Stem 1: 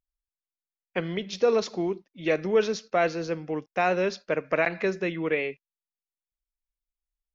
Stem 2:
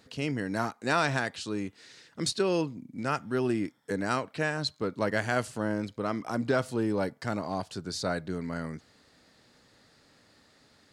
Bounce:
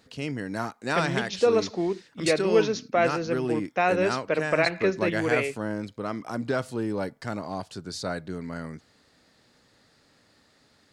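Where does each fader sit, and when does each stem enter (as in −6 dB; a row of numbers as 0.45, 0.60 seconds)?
+1.0, −0.5 decibels; 0.00, 0.00 seconds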